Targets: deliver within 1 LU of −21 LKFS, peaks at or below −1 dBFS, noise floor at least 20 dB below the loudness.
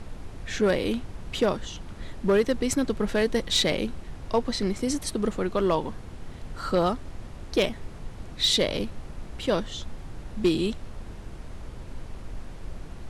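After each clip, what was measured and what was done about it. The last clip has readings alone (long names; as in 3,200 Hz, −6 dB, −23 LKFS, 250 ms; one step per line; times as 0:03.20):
share of clipped samples 0.3%; peaks flattened at −14.5 dBFS; background noise floor −41 dBFS; target noise floor −47 dBFS; integrated loudness −26.5 LKFS; sample peak −14.5 dBFS; target loudness −21.0 LKFS
→ clipped peaks rebuilt −14.5 dBFS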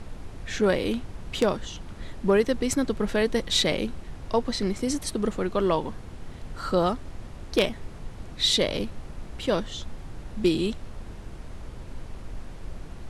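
share of clipped samples 0.0%; background noise floor −41 dBFS; target noise floor −47 dBFS
→ noise reduction from a noise print 6 dB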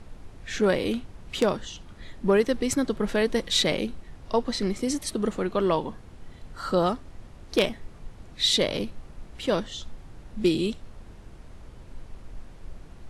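background noise floor −47 dBFS; integrated loudness −26.5 LKFS; sample peak −5.5 dBFS; target loudness −21.0 LKFS
→ level +5.5 dB
brickwall limiter −1 dBFS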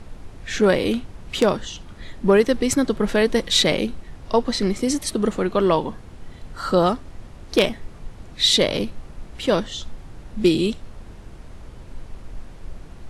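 integrated loudness −21.0 LKFS; sample peak −1.0 dBFS; background noise floor −41 dBFS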